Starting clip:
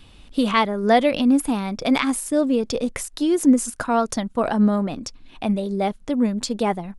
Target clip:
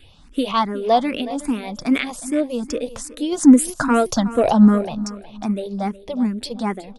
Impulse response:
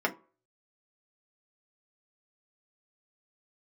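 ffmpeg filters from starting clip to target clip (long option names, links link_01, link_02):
-filter_complex "[0:a]asplit=3[link_01][link_02][link_03];[link_01]afade=type=out:start_time=3.31:duration=0.02[link_04];[link_02]acontrast=61,afade=type=in:start_time=3.31:duration=0.02,afade=type=out:start_time=4.84:duration=0.02[link_05];[link_03]afade=type=in:start_time=4.84:duration=0.02[link_06];[link_04][link_05][link_06]amix=inputs=3:normalize=0,aecho=1:1:366|732|1098:0.158|0.046|0.0133,asplit=2[link_07][link_08];[link_08]afreqshift=2.5[link_09];[link_07][link_09]amix=inputs=2:normalize=1,volume=1.5dB"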